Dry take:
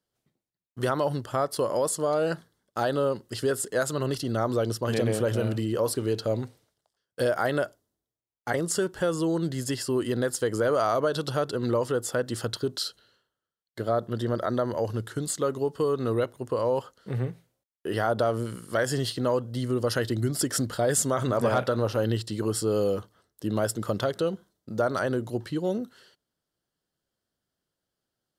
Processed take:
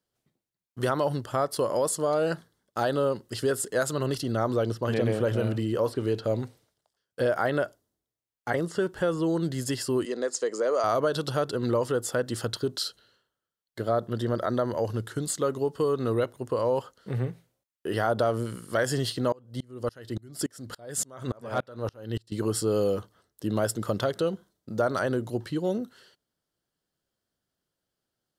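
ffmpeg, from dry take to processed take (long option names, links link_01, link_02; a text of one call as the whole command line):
ffmpeg -i in.wav -filter_complex "[0:a]asettb=1/sr,asplit=3[link_01][link_02][link_03];[link_01]atrim=end=4.254[link_04];[link_02]atrim=start=4.25:end=9.4,asetpts=PTS-STARTPTS,afade=type=in:duration=0.004:curve=qsin,afade=type=out:start_time=5.146:duration=0.004:curve=qsin,acrossover=split=3500[link_05][link_06];[link_06]acompressor=threshold=-49dB:ratio=4:attack=1:release=60[link_07];[link_05][link_07]amix=inputs=2:normalize=0[link_08];[link_03]atrim=start=9.396[link_09];[link_04][link_08]acrossfade=duration=0.004:curve1=hsin:curve2=qsin[link_10];[link_10][link_09]acrossfade=duration=0.004:curve1=qsin:curve2=hsin,asettb=1/sr,asplit=3[link_11][link_12][link_13];[link_11]atrim=end=10.054[link_14];[link_12]atrim=start=10.05:end=10.84,asetpts=PTS-STARTPTS,afade=type=in:duration=0.004:curve=qsin,afade=type=out:start_time=0.786:duration=0.004:curve=qsin,highpass=frequency=280:width=0.5412,highpass=frequency=280:width=1.3066,equalizer=frequency=310:width_type=q:width=4:gain=-7,equalizer=frequency=840:width_type=q:width=4:gain=-4,equalizer=frequency=1500:width_type=q:width=4:gain=-7,equalizer=frequency=3200:width_type=q:width=4:gain=-8,equalizer=frequency=6700:width_type=q:width=4:gain=5,lowpass=frequency=7700:width=0.5412,lowpass=frequency=7700:width=1.3066[link_15];[link_13]atrim=start=10.836[link_16];[link_14][link_15]acrossfade=duration=0.004:curve1=hsin:curve2=qsin[link_17];[link_17][link_16]acrossfade=duration=0.004:curve1=qsin:curve2=hsin,asettb=1/sr,asplit=3[link_18][link_19][link_20];[link_18]atrim=end=19.324[link_21];[link_19]atrim=start=19.32:end=22.32,asetpts=PTS-STARTPTS,afade=type=in:duration=0.004:curve=qsin,afade=type=out:start_time=2.996:duration=0.004:curve=qsin,aeval=exprs='val(0)*pow(10,-31*if(lt(mod(-3.5*n/s,1),2*abs(-3.5)/1000),1-mod(-3.5*n/s,1)/(2*abs(-3.5)/1000),(mod(-3.5*n/s,1)-2*abs(-3.5)/1000)/(1-2*abs(-3.5)/1000))/20)':channel_layout=same[link_22];[link_20]atrim=start=22.316[link_23];[link_21][link_22]acrossfade=duration=0.004:curve1=hsin:curve2=qsin[link_24];[link_24][link_23]acrossfade=duration=0.004:curve1=qsin:curve2=hsin" out.wav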